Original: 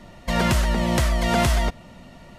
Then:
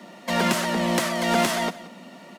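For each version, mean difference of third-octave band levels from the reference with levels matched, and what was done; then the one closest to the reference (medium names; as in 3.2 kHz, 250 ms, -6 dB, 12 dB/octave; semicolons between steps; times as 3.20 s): 4.0 dB: steep high-pass 180 Hz 48 dB/octave; in parallel at -8 dB: wavefolder -25.5 dBFS; on the sum: bit crusher 12-bit; delay 177 ms -17.5 dB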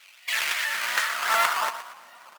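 13.5 dB: decimation with a swept rate 14×, swing 160% 2.7 Hz; on a send: feedback delay 118 ms, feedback 41%, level -11 dB; on the sum: high-pass sweep 2.5 kHz -> 1.1 kHz, 0.08–1.69 s; vibrato with a chosen wave saw up 3.1 Hz, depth 100 cents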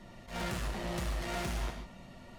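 6.0 dB: saturation -27 dBFS, distortion -8 dB; gated-style reverb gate 170 ms flat, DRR 3 dB; flange 2 Hz, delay 5.2 ms, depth 4.1 ms, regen -62%; attacks held to a fixed rise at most 150 dB/s; trim -3.5 dB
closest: first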